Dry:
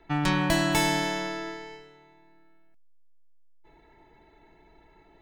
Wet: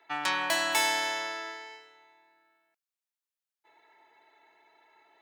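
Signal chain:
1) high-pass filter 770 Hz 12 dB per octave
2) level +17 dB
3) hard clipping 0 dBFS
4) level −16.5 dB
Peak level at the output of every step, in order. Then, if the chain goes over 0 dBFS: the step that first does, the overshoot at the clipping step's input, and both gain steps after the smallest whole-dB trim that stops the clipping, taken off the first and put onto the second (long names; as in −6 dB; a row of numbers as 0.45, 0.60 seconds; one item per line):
−13.5, +3.5, 0.0, −16.5 dBFS
step 2, 3.5 dB
step 2 +13 dB, step 4 −12.5 dB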